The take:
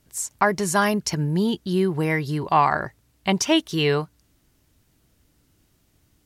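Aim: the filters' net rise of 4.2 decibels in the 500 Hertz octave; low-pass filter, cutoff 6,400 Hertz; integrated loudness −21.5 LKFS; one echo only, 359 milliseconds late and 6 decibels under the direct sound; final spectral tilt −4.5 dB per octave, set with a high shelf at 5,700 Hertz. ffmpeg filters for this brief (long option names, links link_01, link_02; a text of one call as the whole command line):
ffmpeg -i in.wav -af "lowpass=6400,equalizer=frequency=500:width_type=o:gain=5.5,highshelf=frequency=5700:gain=9,aecho=1:1:359:0.501,volume=-1.5dB" out.wav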